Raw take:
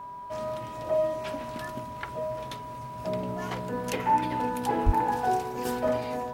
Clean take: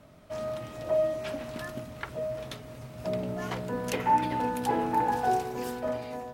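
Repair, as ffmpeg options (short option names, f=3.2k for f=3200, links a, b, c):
-filter_complex "[0:a]bandreject=f=404.9:t=h:w=4,bandreject=f=809.8:t=h:w=4,bandreject=f=1.2147k:t=h:w=4,bandreject=f=1.6196k:t=h:w=4,bandreject=f=980:w=30,asplit=3[a][b][c];[a]afade=t=out:st=4.85:d=0.02[d];[b]highpass=f=140:w=0.5412,highpass=f=140:w=1.3066,afade=t=in:st=4.85:d=0.02,afade=t=out:st=4.97:d=0.02[e];[c]afade=t=in:st=4.97:d=0.02[f];[d][e][f]amix=inputs=3:normalize=0,asetnsamples=n=441:p=0,asendcmd='5.65 volume volume -5dB',volume=0dB"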